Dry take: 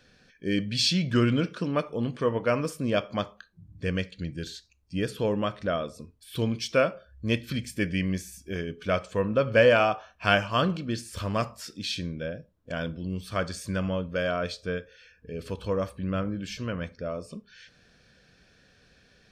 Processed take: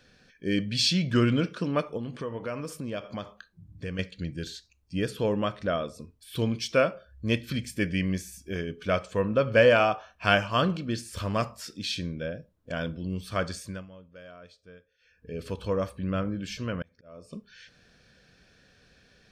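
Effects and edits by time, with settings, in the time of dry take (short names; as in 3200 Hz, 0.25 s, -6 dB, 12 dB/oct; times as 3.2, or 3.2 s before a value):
1.97–3.99 compressor 3:1, threshold -32 dBFS
13.52–15.32 dip -19.5 dB, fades 0.34 s
16.82–17.33 auto swell 0.581 s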